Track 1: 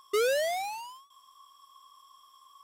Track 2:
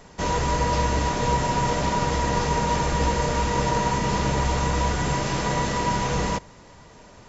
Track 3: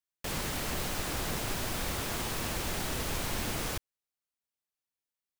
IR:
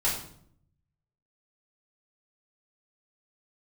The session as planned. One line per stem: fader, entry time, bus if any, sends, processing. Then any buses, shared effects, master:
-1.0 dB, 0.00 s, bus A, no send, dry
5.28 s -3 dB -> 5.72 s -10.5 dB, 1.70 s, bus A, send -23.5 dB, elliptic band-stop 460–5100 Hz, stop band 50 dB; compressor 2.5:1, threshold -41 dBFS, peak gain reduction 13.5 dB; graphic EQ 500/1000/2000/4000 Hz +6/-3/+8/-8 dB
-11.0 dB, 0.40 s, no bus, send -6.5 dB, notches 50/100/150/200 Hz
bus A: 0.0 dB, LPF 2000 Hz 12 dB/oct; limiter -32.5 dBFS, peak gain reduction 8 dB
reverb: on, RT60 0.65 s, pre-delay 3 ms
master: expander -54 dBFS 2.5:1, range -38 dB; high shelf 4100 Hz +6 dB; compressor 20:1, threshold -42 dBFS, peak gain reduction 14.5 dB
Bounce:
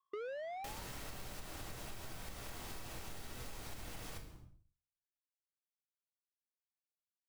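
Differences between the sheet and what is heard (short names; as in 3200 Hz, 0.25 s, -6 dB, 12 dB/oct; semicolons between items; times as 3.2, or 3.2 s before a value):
stem 1 -1.0 dB -> -8.5 dB; stem 2: muted; master: missing high shelf 4100 Hz +6 dB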